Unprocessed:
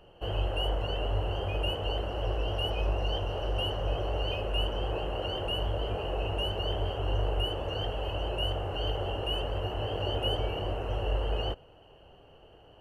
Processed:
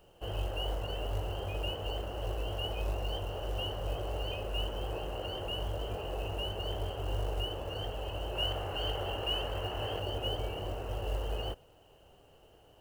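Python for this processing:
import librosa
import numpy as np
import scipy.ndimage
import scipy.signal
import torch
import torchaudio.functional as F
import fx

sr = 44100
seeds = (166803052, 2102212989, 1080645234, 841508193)

y = fx.peak_eq(x, sr, hz=2000.0, db=6.0, octaves=2.9, at=(8.35, 10.0))
y = fx.quant_companded(y, sr, bits=6)
y = F.gain(torch.from_numpy(y), -5.0).numpy()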